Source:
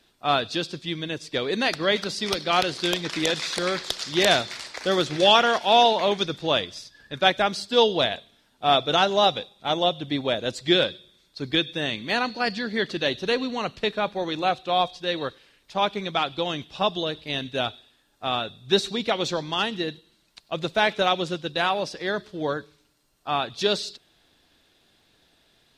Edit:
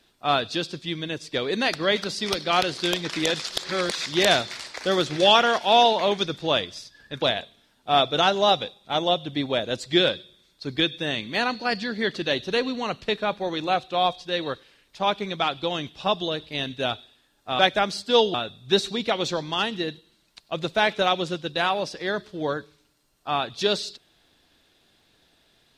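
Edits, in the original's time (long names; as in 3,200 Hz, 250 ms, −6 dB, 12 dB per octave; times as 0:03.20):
0:03.42–0:04.06: reverse
0:07.22–0:07.97: move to 0:18.34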